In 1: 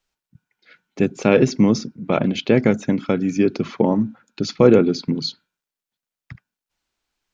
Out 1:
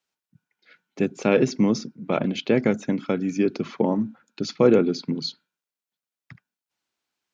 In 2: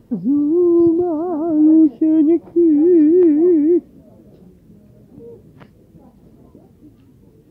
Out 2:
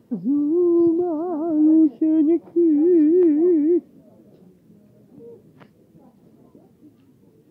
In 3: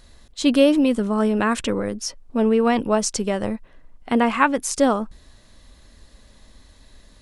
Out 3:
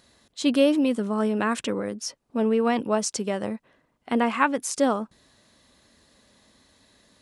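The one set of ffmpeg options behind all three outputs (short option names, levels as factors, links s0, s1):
-af "highpass=140,volume=0.631"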